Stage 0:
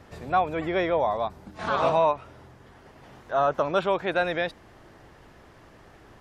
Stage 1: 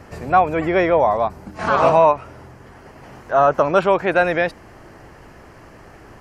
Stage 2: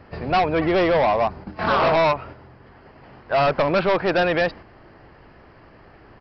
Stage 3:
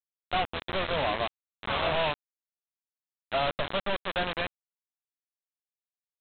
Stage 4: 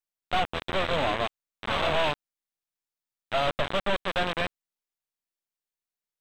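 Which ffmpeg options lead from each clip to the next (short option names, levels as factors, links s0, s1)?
-af "equalizer=f=3600:w=5.2:g=-12,volume=2.66"
-af "agate=range=0.501:threshold=0.0158:ratio=16:detection=peak,aresample=11025,volume=6.31,asoftclip=hard,volume=0.158,aresample=44100,volume=1.12"
-af "equalizer=f=125:t=o:w=1:g=-5,equalizer=f=250:t=o:w=1:g=-11,equalizer=f=500:t=o:w=1:g=-4,equalizer=f=1000:t=o:w=1:g=-5,equalizer=f=2000:t=o:w=1:g=-8,aresample=8000,acrusher=bits=3:mix=0:aa=0.000001,aresample=44100,volume=0.531"
-af "aeval=exprs='if(lt(val(0),0),0.447*val(0),val(0))':c=same,volume=1.58"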